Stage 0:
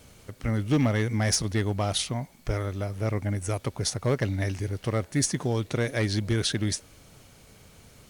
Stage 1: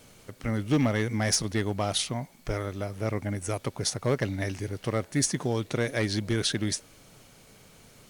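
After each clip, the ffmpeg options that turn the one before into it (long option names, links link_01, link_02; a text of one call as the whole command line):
ffmpeg -i in.wav -af "equalizer=frequency=65:width_type=o:width=0.99:gain=-12" out.wav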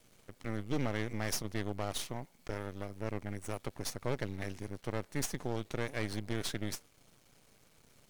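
ffmpeg -i in.wav -af "aeval=exprs='max(val(0),0)':channel_layout=same,volume=-6.5dB" out.wav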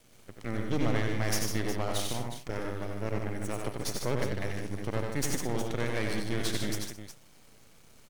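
ffmpeg -i in.wav -af "aecho=1:1:76|92|151|213|362:0.282|0.596|0.473|0.141|0.282,volume=3dB" out.wav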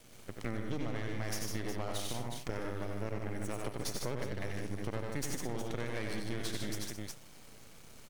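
ffmpeg -i in.wav -af "acompressor=threshold=-35dB:ratio=6,volume=3dB" out.wav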